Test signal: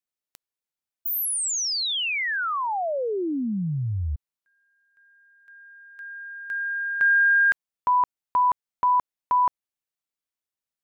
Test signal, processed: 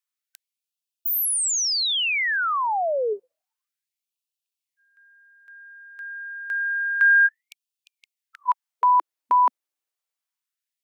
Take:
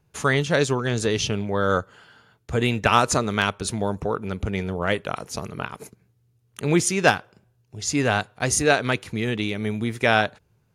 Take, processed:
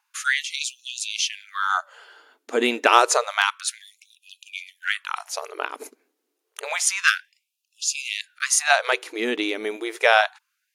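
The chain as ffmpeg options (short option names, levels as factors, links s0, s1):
-af "afftfilt=real='re*gte(b*sr/1024,220*pow(2500/220,0.5+0.5*sin(2*PI*0.29*pts/sr)))':imag='im*gte(b*sr/1024,220*pow(2500/220,0.5+0.5*sin(2*PI*0.29*pts/sr)))':win_size=1024:overlap=0.75,volume=1.41"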